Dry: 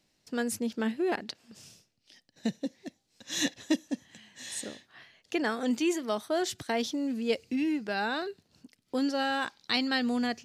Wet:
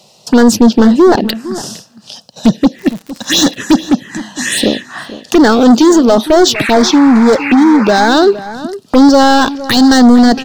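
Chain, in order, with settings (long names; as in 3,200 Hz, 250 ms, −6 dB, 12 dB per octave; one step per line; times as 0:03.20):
Chebyshev high-pass filter 200 Hz, order 2
high-shelf EQ 7,500 Hz −9 dB
notch filter 2,200 Hz, Q 6.7
in parallel at +2.5 dB: downward compressor, threshold −35 dBFS, peak gain reduction 12.5 dB
on the sum: gain into a clipping stage and back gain 28 dB
0:06.54–0:08.07: sound drawn into the spectrogram noise 770–2,800 Hz −41 dBFS
phaser swept by the level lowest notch 280 Hz, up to 2,700 Hz, full sweep at −28 dBFS
slap from a distant wall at 79 metres, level −16 dB
0:02.78–0:03.55: surface crackle 110 per second −45 dBFS
boost into a limiter +27 dB
level −1 dB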